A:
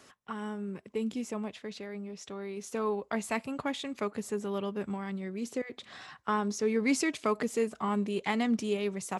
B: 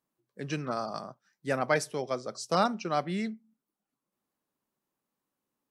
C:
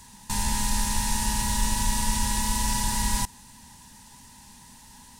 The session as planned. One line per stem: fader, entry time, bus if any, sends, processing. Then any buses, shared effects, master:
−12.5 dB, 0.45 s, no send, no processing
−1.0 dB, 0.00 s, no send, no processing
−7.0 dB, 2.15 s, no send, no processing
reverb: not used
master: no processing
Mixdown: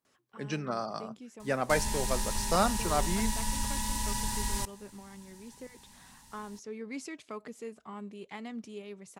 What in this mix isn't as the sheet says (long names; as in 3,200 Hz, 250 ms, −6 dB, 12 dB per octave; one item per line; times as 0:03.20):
stem A: entry 0.45 s → 0.05 s
stem C: entry 2.15 s → 1.40 s